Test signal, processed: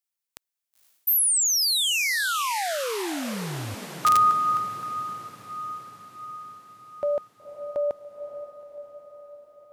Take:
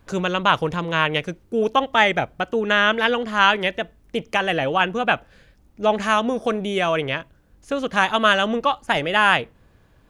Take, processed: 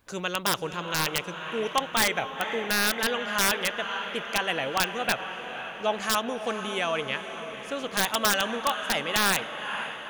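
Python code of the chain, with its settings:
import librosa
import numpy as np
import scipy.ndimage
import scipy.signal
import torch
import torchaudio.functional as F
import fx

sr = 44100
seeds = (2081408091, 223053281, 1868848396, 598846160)

y = fx.tilt_eq(x, sr, slope=2.0)
y = fx.echo_diffused(y, sr, ms=500, feedback_pct=62, wet_db=-10.0)
y = (np.mod(10.0 ** (6.5 / 20.0) * y + 1.0, 2.0) - 1.0) / 10.0 ** (6.5 / 20.0)
y = F.gain(torch.from_numpy(y), -7.0).numpy()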